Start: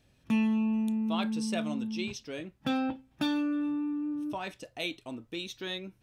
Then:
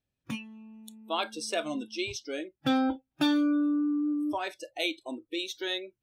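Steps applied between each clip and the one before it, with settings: spectral noise reduction 25 dB; trim +4.5 dB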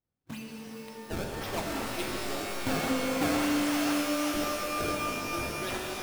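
decimation with a swept rate 26×, swing 160% 1.9 Hz; pitch-shifted reverb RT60 3.5 s, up +12 st, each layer -2 dB, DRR -1 dB; trim -5 dB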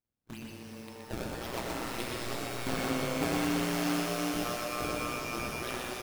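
AM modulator 120 Hz, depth 85%; delay 122 ms -4.5 dB

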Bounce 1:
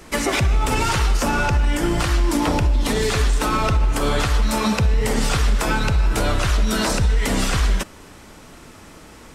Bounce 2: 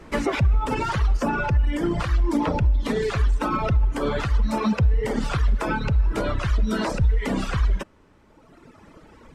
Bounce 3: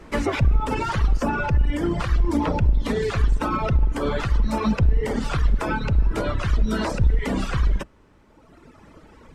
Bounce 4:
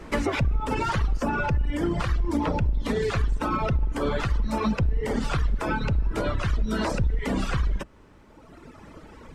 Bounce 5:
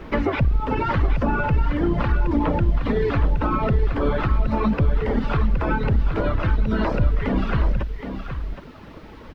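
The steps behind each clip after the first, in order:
low-pass 1.4 kHz 6 dB/octave; reverb removal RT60 2 s; band-stop 740 Hz, Q 14
octave divider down 2 oct, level -5 dB
compression 2.5:1, threshold -26 dBFS, peak gain reduction 9.5 dB; trim +2.5 dB
in parallel at -9.5 dB: word length cut 6-bit, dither triangular; on the sum: distance through air 320 m; delay 769 ms -8.5 dB; trim +2 dB

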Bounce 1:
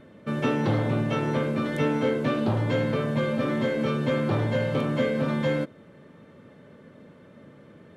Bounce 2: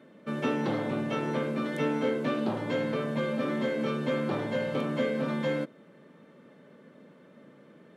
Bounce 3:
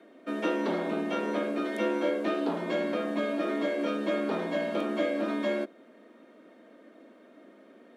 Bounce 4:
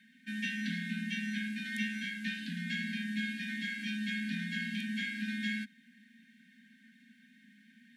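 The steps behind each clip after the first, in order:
high-pass 160 Hz 24 dB/octave; trim -3.5 dB
frequency shift +63 Hz
brick-wall FIR band-stop 250–1500 Hz; trim +2 dB

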